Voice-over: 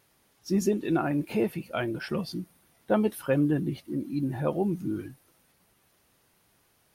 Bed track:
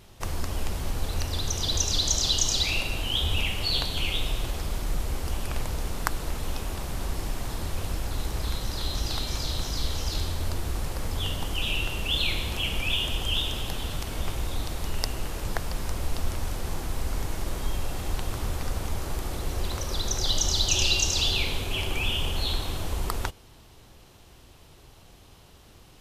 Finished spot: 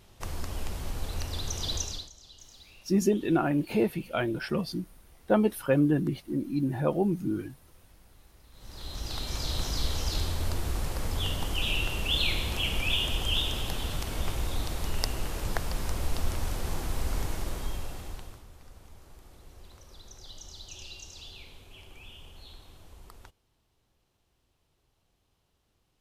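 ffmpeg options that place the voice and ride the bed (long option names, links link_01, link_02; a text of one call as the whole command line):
ffmpeg -i stem1.wav -i stem2.wav -filter_complex "[0:a]adelay=2400,volume=1dB[link_01];[1:a]volume=22dB,afade=type=out:start_time=1.72:duration=0.38:silence=0.0707946,afade=type=in:start_time=8.52:duration=1.1:silence=0.0446684,afade=type=out:start_time=17.21:duration=1.23:silence=0.0944061[link_02];[link_01][link_02]amix=inputs=2:normalize=0" out.wav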